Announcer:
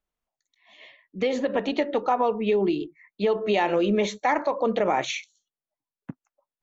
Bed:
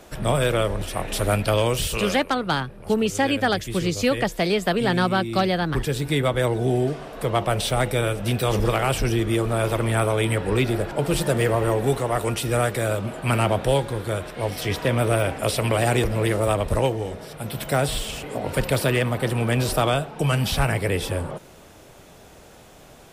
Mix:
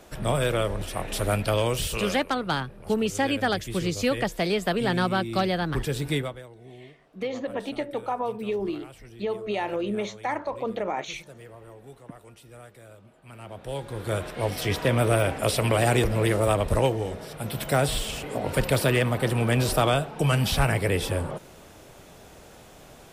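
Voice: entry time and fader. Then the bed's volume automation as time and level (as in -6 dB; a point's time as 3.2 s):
6.00 s, -6.0 dB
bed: 6.16 s -3.5 dB
6.47 s -25 dB
13.32 s -25 dB
14.14 s -1 dB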